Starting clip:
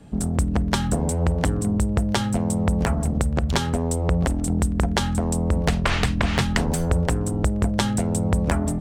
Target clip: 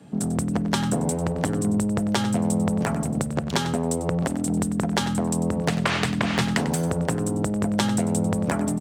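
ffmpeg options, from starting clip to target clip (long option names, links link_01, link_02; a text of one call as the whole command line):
ffmpeg -i in.wav -af "highpass=frequency=120:width=0.5412,highpass=frequency=120:width=1.3066,acontrast=54,aecho=1:1:96:0.237,volume=-6dB" out.wav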